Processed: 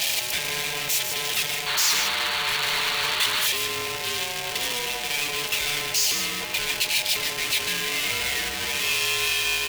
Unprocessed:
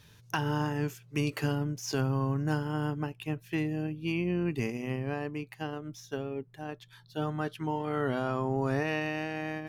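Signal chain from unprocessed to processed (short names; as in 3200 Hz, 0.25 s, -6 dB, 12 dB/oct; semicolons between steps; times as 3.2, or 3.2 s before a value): infinite clipping; comb 3.6 ms, depth 46%; echo 0.149 s -6.5 dB; ring modulator 730 Hz; resonant high shelf 1700 Hz +12.5 dB, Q 1.5; painted sound noise, 1.66–3.47, 840–4600 Hz -27 dBFS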